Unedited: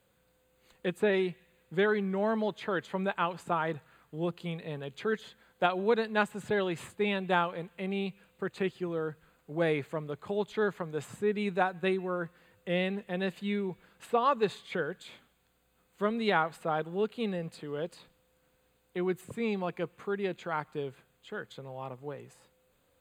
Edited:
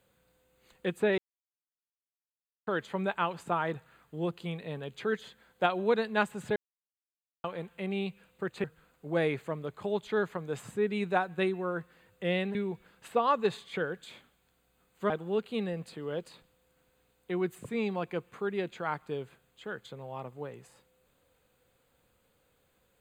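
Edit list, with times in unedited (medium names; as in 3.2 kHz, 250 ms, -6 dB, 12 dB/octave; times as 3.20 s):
1.18–2.67 s: mute
6.56–7.44 s: mute
8.64–9.09 s: delete
13.00–13.53 s: delete
16.08–16.76 s: delete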